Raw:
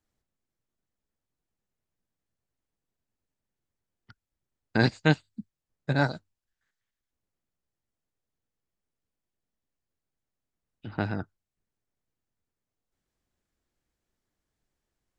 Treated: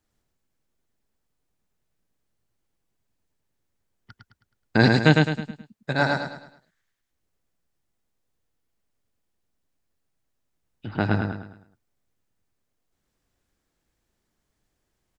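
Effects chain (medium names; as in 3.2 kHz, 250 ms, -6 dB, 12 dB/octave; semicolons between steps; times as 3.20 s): 5.40–6.13 s: bass shelf 350 Hz -9 dB; on a send: feedback delay 106 ms, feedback 39%, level -3 dB; on the sum: trim +5 dB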